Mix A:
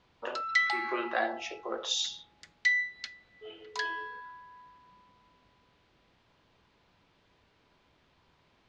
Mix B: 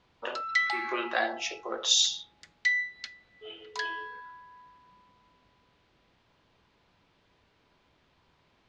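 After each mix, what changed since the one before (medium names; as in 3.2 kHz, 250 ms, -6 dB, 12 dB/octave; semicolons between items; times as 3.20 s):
speech: add treble shelf 2.9 kHz +12 dB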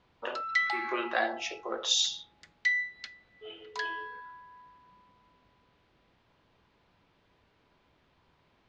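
master: add treble shelf 4 kHz -6.5 dB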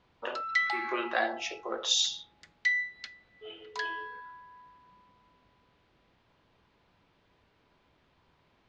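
no change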